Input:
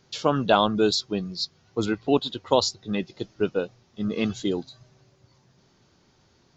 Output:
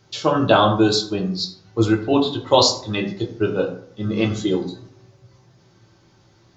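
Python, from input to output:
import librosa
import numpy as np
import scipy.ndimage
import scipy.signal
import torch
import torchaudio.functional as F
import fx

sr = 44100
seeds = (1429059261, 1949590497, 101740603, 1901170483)

y = fx.peak_eq(x, sr, hz=3600.0, db=6.0, octaves=2.3, at=(2.54, 3.0))
y = fx.rev_fdn(y, sr, rt60_s=0.6, lf_ratio=1.1, hf_ratio=0.55, size_ms=53.0, drr_db=-1.0)
y = y * librosa.db_to_amplitude(2.0)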